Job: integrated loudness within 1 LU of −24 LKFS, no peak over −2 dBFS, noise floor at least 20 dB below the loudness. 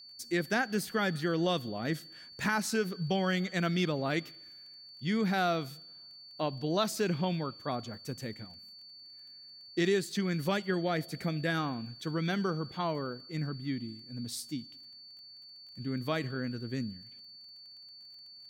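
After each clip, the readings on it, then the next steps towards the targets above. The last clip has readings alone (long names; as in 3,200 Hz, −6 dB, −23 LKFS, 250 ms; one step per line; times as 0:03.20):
crackle rate 19 per second; interfering tone 4,500 Hz; level of the tone −49 dBFS; integrated loudness −33.0 LKFS; sample peak −17.5 dBFS; target loudness −24.0 LKFS
→ click removal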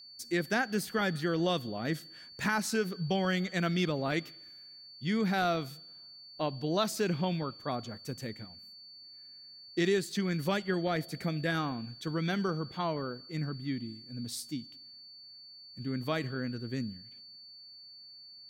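crackle rate 0.16 per second; interfering tone 4,500 Hz; level of the tone −49 dBFS
→ notch filter 4,500 Hz, Q 30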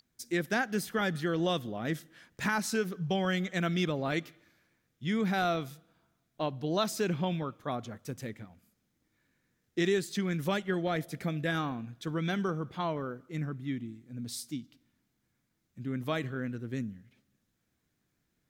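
interfering tone none found; integrated loudness −33.0 LKFS; sample peak −17.5 dBFS; target loudness −24.0 LKFS
→ level +9 dB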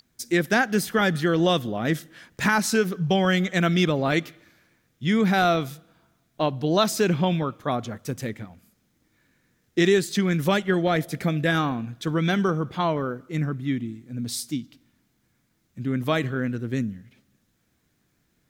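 integrated loudness −24.0 LKFS; sample peak −8.5 dBFS; background noise floor −70 dBFS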